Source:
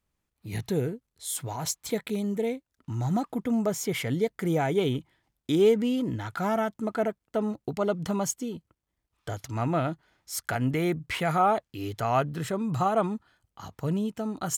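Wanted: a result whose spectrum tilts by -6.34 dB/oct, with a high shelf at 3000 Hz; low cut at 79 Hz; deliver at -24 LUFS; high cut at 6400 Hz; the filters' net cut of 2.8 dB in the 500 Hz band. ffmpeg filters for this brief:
-af "highpass=79,lowpass=6.4k,equalizer=f=500:t=o:g=-3.5,highshelf=f=3k:g=-6,volume=6.5dB"

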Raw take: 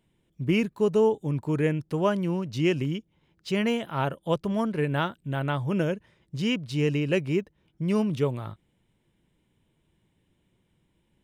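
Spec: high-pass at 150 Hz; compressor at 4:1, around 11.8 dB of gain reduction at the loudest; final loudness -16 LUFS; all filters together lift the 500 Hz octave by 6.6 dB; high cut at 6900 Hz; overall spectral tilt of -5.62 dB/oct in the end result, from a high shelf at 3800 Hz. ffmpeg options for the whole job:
-af "highpass=150,lowpass=6.9k,equalizer=f=500:t=o:g=8,highshelf=f=3.8k:g=4.5,acompressor=threshold=-27dB:ratio=4,volume=15.5dB"

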